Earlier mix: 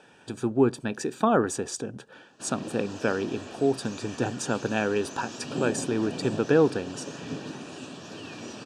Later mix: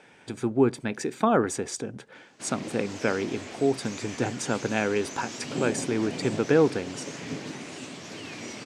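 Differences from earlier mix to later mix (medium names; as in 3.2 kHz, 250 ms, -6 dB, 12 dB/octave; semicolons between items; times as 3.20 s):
background: add treble shelf 5 kHz +7 dB; master: remove Butterworth band-stop 2.1 kHz, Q 4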